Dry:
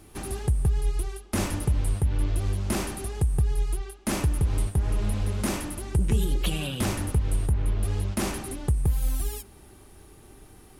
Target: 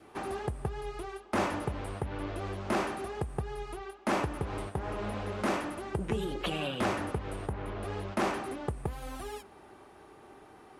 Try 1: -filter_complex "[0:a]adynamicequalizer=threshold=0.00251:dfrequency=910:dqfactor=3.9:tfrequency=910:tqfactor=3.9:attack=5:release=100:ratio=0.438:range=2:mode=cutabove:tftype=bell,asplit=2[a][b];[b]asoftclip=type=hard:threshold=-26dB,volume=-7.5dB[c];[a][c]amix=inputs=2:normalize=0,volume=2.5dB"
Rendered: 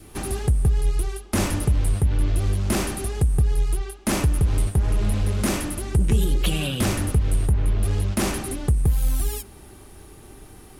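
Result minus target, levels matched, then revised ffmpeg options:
1000 Hz band -12.0 dB
-filter_complex "[0:a]adynamicequalizer=threshold=0.00251:dfrequency=910:dqfactor=3.9:tfrequency=910:tqfactor=3.9:attack=5:release=100:ratio=0.438:range=2:mode=cutabove:tftype=bell,bandpass=f=890:t=q:w=0.83:csg=0,asplit=2[a][b];[b]asoftclip=type=hard:threshold=-26dB,volume=-7.5dB[c];[a][c]amix=inputs=2:normalize=0,volume=2.5dB"

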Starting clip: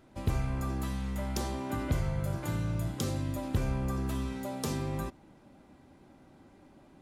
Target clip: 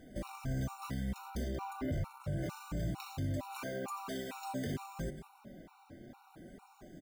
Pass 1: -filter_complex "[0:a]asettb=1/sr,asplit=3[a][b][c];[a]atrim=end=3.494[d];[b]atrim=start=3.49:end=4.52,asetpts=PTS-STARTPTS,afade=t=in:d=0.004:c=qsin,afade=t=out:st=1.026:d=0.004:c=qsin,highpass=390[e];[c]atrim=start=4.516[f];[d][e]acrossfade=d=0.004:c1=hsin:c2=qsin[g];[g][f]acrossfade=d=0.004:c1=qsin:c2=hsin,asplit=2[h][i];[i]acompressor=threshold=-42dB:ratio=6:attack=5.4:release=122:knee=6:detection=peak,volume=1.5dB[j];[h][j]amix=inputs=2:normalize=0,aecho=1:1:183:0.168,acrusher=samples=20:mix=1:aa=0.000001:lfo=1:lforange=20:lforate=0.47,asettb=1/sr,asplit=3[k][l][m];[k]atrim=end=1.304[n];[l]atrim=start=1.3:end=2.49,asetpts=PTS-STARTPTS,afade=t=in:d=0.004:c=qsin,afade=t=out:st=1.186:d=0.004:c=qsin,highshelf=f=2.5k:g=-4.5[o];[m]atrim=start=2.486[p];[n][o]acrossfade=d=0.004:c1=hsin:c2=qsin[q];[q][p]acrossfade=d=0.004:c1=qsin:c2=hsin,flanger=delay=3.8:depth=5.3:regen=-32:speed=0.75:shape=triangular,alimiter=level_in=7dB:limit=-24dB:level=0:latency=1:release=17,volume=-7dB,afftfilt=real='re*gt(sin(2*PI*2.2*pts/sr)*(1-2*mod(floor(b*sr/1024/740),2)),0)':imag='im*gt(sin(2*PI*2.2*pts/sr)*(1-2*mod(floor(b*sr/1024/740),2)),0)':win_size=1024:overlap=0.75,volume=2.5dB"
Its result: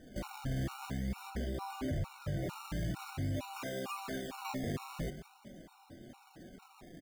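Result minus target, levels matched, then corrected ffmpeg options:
decimation with a swept rate: distortion +9 dB
-filter_complex "[0:a]asettb=1/sr,asplit=3[a][b][c];[a]atrim=end=3.494[d];[b]atrim=start=3.49:end=4.52,asetpts=PTS-STARTPTS,afade=t=in:d=0.004:c=qsin,afade=t=out:st=1.026:d=0.004:c=qsin,highpass=390[e];[c]atrim=start=4.516[f];[d][e]acrossfade=d=0.004:c1=hsin:c2=qsin[g];[g][f]acrossfade=d=0.004:c1=qsin:c2=hsin,asplit=2[h][i];[i]acompressor=threshold=-42dB:ratio=6:attack=5.4:release=122:knee=6:detection=peak,volume=1.5dB[j];[h][j]amix=inputs=2:normalize=0,aecho=1:1:183:0.168,acrusher=samples=4:mix=1:aa=0.000001:lfo=1:lforange=4:lforate=0.47,asettb=1/sr,asplit=3[k][l][m];[k]atrim=end=1.304[n];[l]atrim=start=1.3:end=2.49,asetpts=PTS-STARTPTS,afade=t=in:d=0.004:c=qsin,afade=t=out:st=1.186:d=0.004:c=qsin,highshelf=f=2.5k:g=-4.5[o];[m]atrim=start=2.486[p];[n][o]acrossfade=d=0.004:c1=hsin:c2=qsin[q];[q][p]acrossfade=d=0.004:c1=qsin:c2=hsin,flanger=delay=3.8:depth=5.3:regen=-32:speed=0.75:shape=triangular,alimiter=level_in=7dB:limit=-24dB:level=0:latency=1:release=17,volume=-7dB,afftfilt=real='re*gt(sin(2*PI*2.2*pts/sr)*(1-2*mod(floor(b*sr/1024/740),2)),0)':imag='im*gt(sin(2*PI*2.2*pts/sr)*(1-2*mod(floor(b*sr/1024/740),2)),0)':win_size=1024:overlap=0.75,volume=2.5dB"

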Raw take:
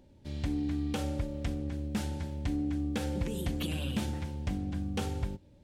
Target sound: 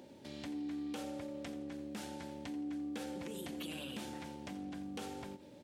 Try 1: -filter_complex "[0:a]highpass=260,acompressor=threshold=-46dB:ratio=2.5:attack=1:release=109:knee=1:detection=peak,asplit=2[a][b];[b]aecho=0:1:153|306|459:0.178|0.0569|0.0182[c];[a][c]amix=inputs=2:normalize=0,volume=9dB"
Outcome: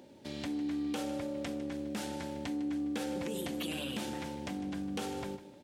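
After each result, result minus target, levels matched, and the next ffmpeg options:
echo 68 ms late; compressor: peak gain reduction -6.5 dB
-filter_complex "[0:a]highpass=260,acompressor=threshold=-46dB:ratio=2.5:attack=1:release=109:knee=1:detection=peak,asplit=2[a][b];[b]aecho=0:1:85|170|255:0.178|0.0569|0.0182[c];[a][c]amix=inputs=2:normalize=0,volume=9dB"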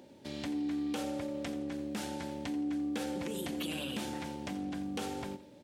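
compressor: peak gain reduction -6.5 dB
-filter_complex "[0:a]highpass=260,acompressor=threshold=-56.5dB:ratio=2.5:attack=1:release=109:knee=1:detection=peak,asplit=2[a][b];[b]aecho=0:1:85|170|255:0.178|0.0569|0.0182[c];[a][c]amix=inputs=2:normalize=0,volume=9dB"

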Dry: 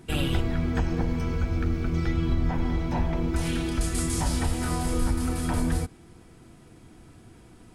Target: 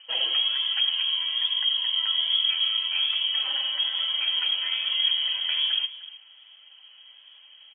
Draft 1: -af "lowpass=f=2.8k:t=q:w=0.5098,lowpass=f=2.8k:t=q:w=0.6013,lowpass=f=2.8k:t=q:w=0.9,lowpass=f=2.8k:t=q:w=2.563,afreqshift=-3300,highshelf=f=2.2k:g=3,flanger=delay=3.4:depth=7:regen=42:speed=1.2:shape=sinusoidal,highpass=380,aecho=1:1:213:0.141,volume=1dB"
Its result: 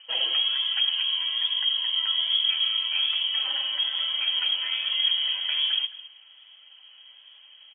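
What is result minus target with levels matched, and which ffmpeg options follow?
echo 89 ms early
-af "lowpass=f=2.8k:t=q:w=0.5098,lowpass=f=2.8k:t=q:w=0.6013,lowpass=f=2.8k:t=q:w=0.9,lowpass=f=2.8k:t=q:w=2.563,afreqshift=-3300,highshelf=f=2.2k:g=3,flanger=delay=3.4:depth=7:regen=42:speed=1.2:shape=sinusoidal,highpass=380,aecho=1:1:302:0.141,volume=1dB"

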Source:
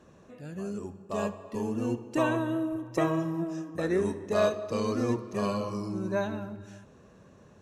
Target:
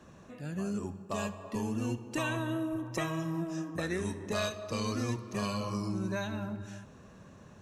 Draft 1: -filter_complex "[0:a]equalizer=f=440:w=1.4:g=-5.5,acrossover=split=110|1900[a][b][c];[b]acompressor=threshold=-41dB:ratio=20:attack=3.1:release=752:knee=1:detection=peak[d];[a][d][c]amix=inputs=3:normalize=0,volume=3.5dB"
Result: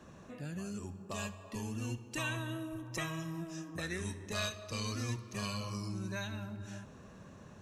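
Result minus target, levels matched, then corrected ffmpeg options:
compressor: peak gain reduction +8.5 dB
-filter_complex "[0:a]equalizer=f=440:w=1.4:g=-5.5,acrossover=split=110|1900[a][b][c];[b]acompressor=threshold=-32dB:ratio=20:attack=3.1:release=752:knee=1:detection=peak[d];[a][d][c]amix=inputs=3:normalize=0,volume=3.5dB"

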